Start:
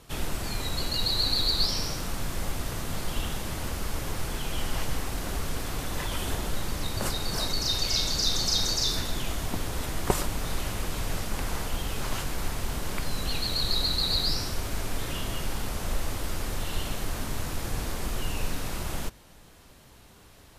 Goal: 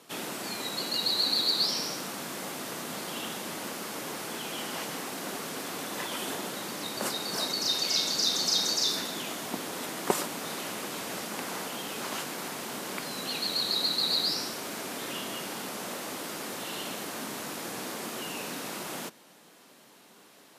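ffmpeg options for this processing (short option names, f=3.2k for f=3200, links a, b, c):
-af "highpass=f=200:w=0.5412,highpass=f=200:w=1.3066"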